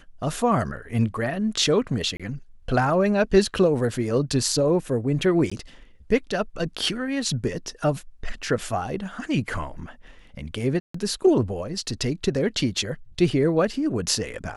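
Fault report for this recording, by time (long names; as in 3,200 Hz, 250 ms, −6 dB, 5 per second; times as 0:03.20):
0:02.17–0:02.20: drop-out 26 ms
0:05.50–0:05.51: drop-out 15 ms
0:10.80–0:10.94: drop-out 144 ms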